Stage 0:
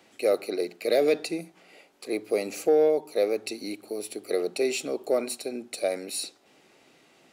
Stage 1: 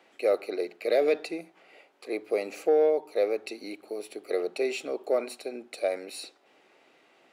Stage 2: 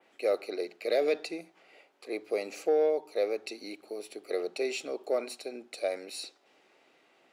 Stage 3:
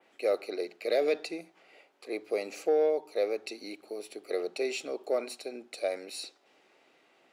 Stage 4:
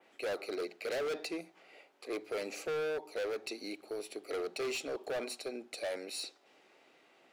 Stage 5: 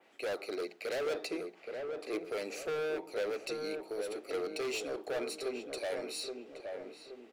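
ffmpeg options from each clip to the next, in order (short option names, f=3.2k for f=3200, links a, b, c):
-af "bass=f=250:g=-14,treble=f=4k:g=-11"
-af "adynamicequalizer=threshold=0.00224:dfrequency=5600:dqfactor=0.92:tfrequency=5600:tqfactor=0.92:attack=5:release=100:ratio=0.375:range=3:mode=boostabove:tftype=bell,volume=-3.5dB"
-af anull
-af "volume=33dB,asoftclip=hard,volume=-33dB"
-filter_complex "[0:a]asplit=2[a][b];[b]adelay=823,lowpass=f=1.3k:p=1,volume=-4dB,asplit=2[c][d];[d]adelay=823,lowpass=f=1.3k:p=1,volume=0.47,asplit=2[e][f];[f]adelay=823,lowpass=f=1.3k:p=1,volume=0.47,asplit=2[g][h];[h]adelay=823,lowpass=f=1.3k:p=1,volume=0.47,asplit=2[i][j];[j]adelay=823,lowpass=f=1.3k:p=1,volume=0.47,asplit=2[k][l];[l]adelay=823,lowpass=f=1.3k:p=1,volume=0.47[m];[a][c][e][g][i][k][m]amix=inputs=7:normalize=0"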